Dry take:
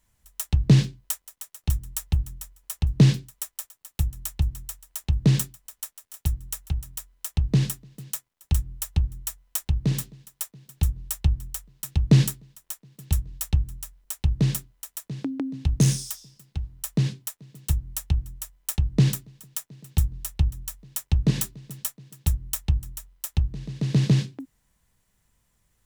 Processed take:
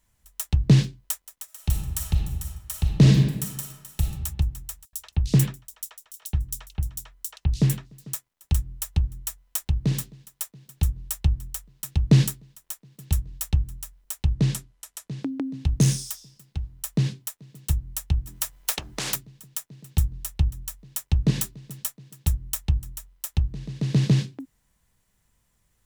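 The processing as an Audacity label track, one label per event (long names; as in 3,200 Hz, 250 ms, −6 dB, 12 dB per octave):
1.440000	4.060000	thrown reverb, RT60 1.1 s, DRR 0.5 dB
4.850000	8.140000	multiband delay without the direct sound highs, lows 80 ms, split 3,500 Hz
14.230000	15.230000	low-pass filter 11,000 Hz
18.270000	19.160000	every bin compressed towards the loudest bin 4 to 1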